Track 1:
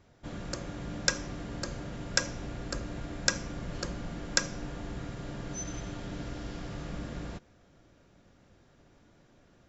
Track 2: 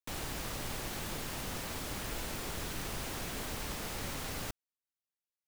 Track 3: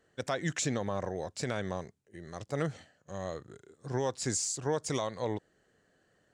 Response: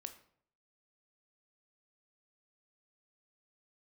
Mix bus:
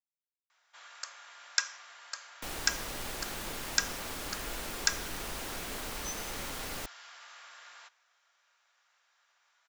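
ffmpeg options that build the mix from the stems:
-filter_complex "[0:a]highpass=f=1000:w=0.5412,highpass=f=1000:w=1.3066,adelay=500,volume=0.668,asplit=2[s0][s1];[s1]volume=0.596[s2];[1:a]adelay=2350,volume=1.12[s3];[3:a]atrim=start_sample=2205[s4];[s2][s4]afir=irnorm=-1:irlink=0[s5];[s0][s3][s5]amix=inputs=3:normalize=0,equalizer=f=110:w=0.74:g=-8"

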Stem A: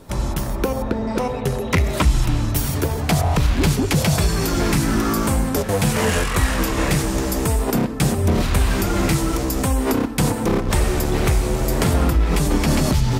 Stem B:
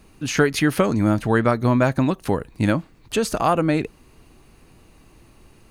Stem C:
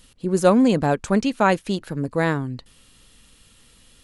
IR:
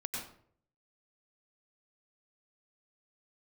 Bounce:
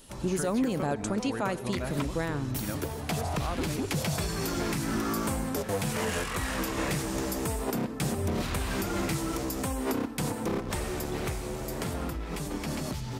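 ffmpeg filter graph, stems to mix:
-filter_complex "[0:a]lowshelf=f=67:g=-12,dynaudnorm=f=480:g=11:m=3.76,volume=0.2[s0];[1:a]volume=0.15[s1];[2:a]highshelf=f=7900:g=9.5,alimiter=limit=0.237:level=0:latency=1,volume=0.596,asplit=2[s2][s3];[s3]volume=0.112[s4];[3:a]atrim=start_sample=2205[s5];[s4][s5]afir=irnorm=-1:irlink=0[s6];[s0][s1][s2][s6]amix=inputs=4:normalize=0,alimiter=limit=0.106:level=0:latency=1:release=201"

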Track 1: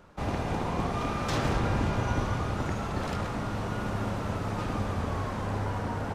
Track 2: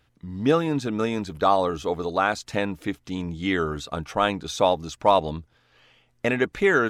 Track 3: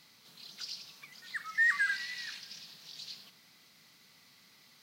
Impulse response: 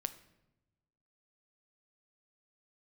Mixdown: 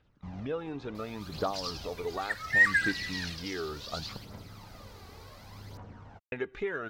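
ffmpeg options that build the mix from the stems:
-filter_complex "[0:a]adelay=50,volume=0.106[s0];[1:a]acrossover=split=4000[s1][s2];[s2]acompressor=threshold=0.00447:ratio=4:attack=1:release=60[s3];[s1][s3]amix=inputs=2:normalize=0,volume=0.335,asplit=3[s4][s5][s6];[s4]atrim=end=4.17,asetpts=PTS-STARTPTS,afade=t=out:st=4.166:d=0.004:c=hsin[s7];[s5]atrim=start=4.17:end=6.32,asetpts=PTS-STARTPTS,volume=0[s8];[s6]atrim=start=6.32,asetpts=PTS-STARTPTS,afade=t=in:d=0.004:c=hsin[s9];[s7][s8][s9]concat=n=3:v=0:a=1,asplit=2[s10][s11];[s11]volume=0.141[s12];[2:a]adelay=950,volume=1.33[s13];[s0][s10]amix=inputs=2:normalize=0,lowpass=f=6500:w=0.5412,lowpass=f=6500:w=1.3066,acompressor=threshold=0.0178:ratio=6,volume=1[s14];[3:a]atrim=start_sample=2205[s15];[s12][s15]afir=irnorm=-1:irlink=0[s16];[s13][s14][s16]amix=inputs=3:normalize=0,aphaser=in_gain=1:out_gain=1:delay=2.7:decay=0.49:speed=0.69:type=triangular"

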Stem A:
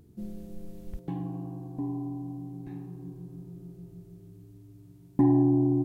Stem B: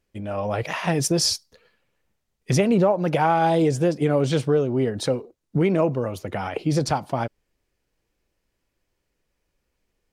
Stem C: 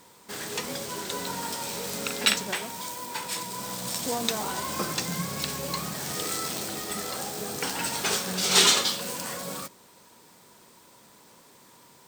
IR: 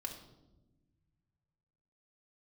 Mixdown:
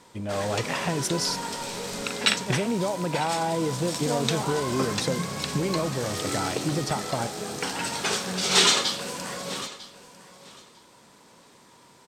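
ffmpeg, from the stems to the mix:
-filter_complex "[0:a]adelay=1050,volume=0.178[s0];[1:a]acompressor=threshold=0.0708:ratio=6,volume=0.891[s1];[2:a]lowpass=9700,highshelf=f=6100:g=-4,volume=1.19,asplit=2[s2][s3];[s3]volume=0.141,aecho=0:1:949|1898|2847:1|0.17|0.0289[s4];[s0][s1][s2][s4]amix=inputs=4:normalize=0"

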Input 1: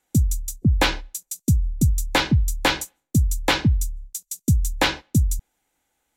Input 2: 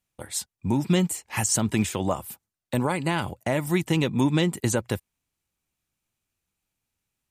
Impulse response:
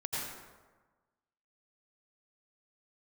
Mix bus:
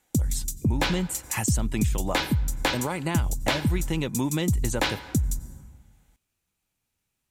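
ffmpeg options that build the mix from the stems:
-filter_complex "[0:a]volume=1.33,asplit=2[s0][s1];[s1]volume=0.0944[s2];[1:a]volume=1.26[s3];[2:a]atrim=start_sample=2205[s4];[s2][s4]afir=irnorm=-1:irlink=0[s5];[s0][s3][s5]amix=inputs=3:normalize=0,acompressor=threshold=0.0398:ratio=2"

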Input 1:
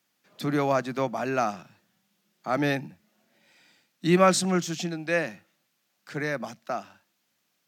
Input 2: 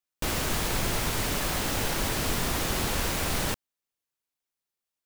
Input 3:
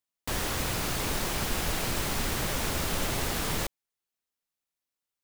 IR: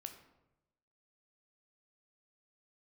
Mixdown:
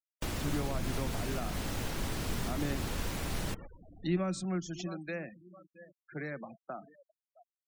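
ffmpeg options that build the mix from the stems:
-filter_complex "[0:a]bandreject=f=223.5:t=h:w=4,bandreject=f=447:t=h:w=4,bandreject=f=670.5:t=h:w=4,bandreject=f=894:t=h:w=4,bandreject=f=1117.5:t=h:w=4,bandreject=f=1341:t=h:w=4,bandreject=f=1564.5:t=h:w=4,bandreject=f=1788:t=h:w=4,bandreject=f=2011.5:t=h:w=4,bandreject=f=2235:t=h:w=4,bandreject=f=2458.5:t=h:w=4,bandreject=f=2682:t=h:w=4,bandreject=f=2905.5:t=h:w=4,bandreject=f=3129:t=h:w=4,bandreject=f=3352.5:t=h:w=4,bandreject=f=3576:t=h:w=4,bandreject=f=3799.5:t=h:w=4,bandreject=f=4023:t=h:w=4,bandreject=f=4246.5:t=h:w=4,bandreject=f=4470:t=h:w=4,volume=0.376,asplit=3[s0][s1][s2];[s1]volume=0.188[s3];[s2]volume=0.112[s4];[1:a]volume=0.596,asplit=2[s5][s6];[s6]volume=0.133[s7];[2:a]highshelf=f=6500:g=-11.5,volume=0.178[s8];[3:a]atrim=start_sample=2205[s9];[s3][s9]afir=irnorm=-1:irlink=0[s10];[s4][s7]amix=inputs=2:normalize=0,aecho=0:1:663|1326|1989|2652|3315:1|0.37|0.137|0.0507|0.0187[s11];[s0][s5][s8][s10][s11]amix=inputs=5:normalize=0,afftfilt=real='re*gte(hypot(re,im),0.00891)':imag='im*gte(hypot(re,im),0.00891)':win_size=1024:overlap=0.75,acrossover=split=330[s12][s13];[s13]acompressor=threshold=0.0112:ratio=4[s14];[s12][s14]amix=inputs=2:normalize=0"

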